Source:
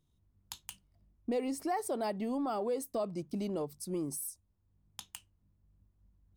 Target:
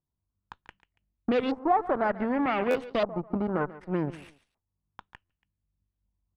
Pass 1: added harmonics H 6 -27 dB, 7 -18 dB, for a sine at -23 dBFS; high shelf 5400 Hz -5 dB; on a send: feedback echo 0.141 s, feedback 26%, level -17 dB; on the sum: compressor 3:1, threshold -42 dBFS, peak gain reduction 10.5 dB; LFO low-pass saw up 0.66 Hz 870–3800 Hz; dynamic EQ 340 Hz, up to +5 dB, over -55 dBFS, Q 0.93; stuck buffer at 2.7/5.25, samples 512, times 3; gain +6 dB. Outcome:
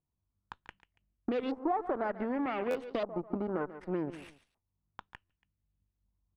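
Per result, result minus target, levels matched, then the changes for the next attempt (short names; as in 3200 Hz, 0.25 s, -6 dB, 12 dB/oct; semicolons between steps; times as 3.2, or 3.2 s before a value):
compressor: peak gain reduction +10.5 dB; 125 Hz band -2.0 dB
remove: compressor 3:1, threshold -42 dBFS, peak gain reduction 10.5 dB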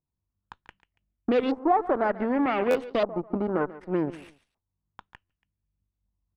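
125 Hz band -4.0 dB
change: dynamic EQ 130 Hz, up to +5 dB, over -55 dBFS, Q 0.93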